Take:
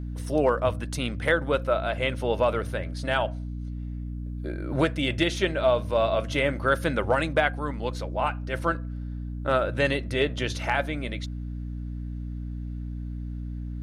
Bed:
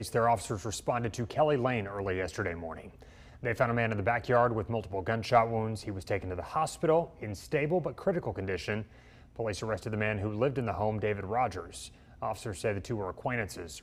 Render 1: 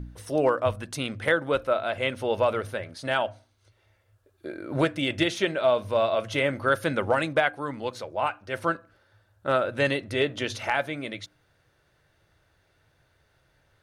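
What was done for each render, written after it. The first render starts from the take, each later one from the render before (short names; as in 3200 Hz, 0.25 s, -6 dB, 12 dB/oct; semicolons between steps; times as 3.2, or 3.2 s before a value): de-hum 60 Hz, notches 5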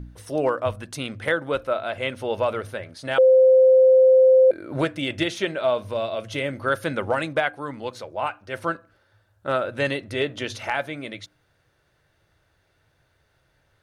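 3.18–4.51 bleep 520 Hz -10.5 dBFS; 5.83–6.61 dynamic EQ 1100 Hz, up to -6 dB, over -36 dBFS, Q 0.74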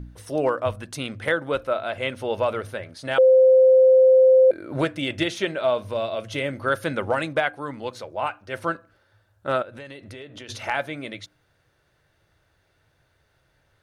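9.62–10.49 compressor, threshold -37 dBFS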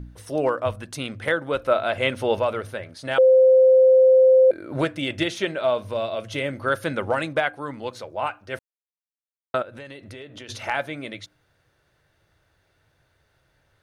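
1.65–2.39 gain +4.5 dB; 8.59–9.54 mute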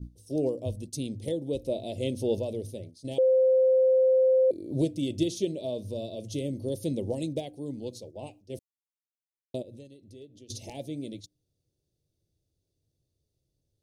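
gate -38 dBFS, range -10 dB; Chebyshev band-stop 350–5500 Hz, order 2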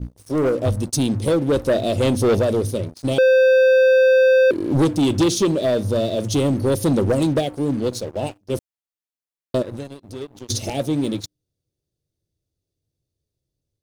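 sample leveller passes 3; AGC gain up to 4.5 dB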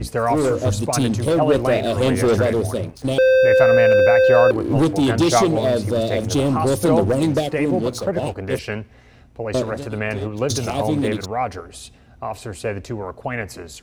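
add bed +6.5 dB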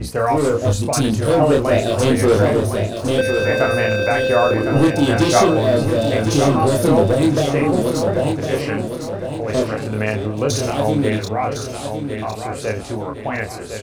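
doubler 28 ms -3 dB; feedback echo 1.058 s, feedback 43%, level -7.5 dB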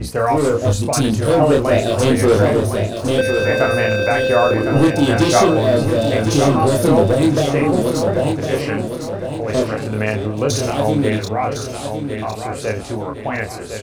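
gain +1 dB; limiter -1 dBFS, peak gain reduction 1 dB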